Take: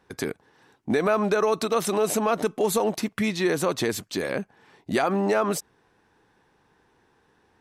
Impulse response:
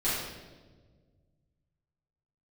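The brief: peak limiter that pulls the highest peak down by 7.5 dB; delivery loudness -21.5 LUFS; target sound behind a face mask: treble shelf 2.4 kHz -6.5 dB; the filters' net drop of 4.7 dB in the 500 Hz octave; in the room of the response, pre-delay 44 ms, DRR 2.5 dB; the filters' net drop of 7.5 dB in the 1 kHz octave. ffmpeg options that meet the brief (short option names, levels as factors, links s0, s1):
-filter_complex "[0:a]equalizer=f=500:t=o:g=-4,equalizer=f=1000:t=o:g=-7.5,alimiter=limit=0.1:level=0:latency=1,asplit=2[s0][s1];[1:a]atrim=start_sample=2205,adelay=44[s2];[s1][s2]afir=irnorm=-1:irlink=0,volume=0.251[s3];[s0][s3]amix=inputs=2:normalize=0,highshelf=f=2400:g=-6.5,volume=2.37"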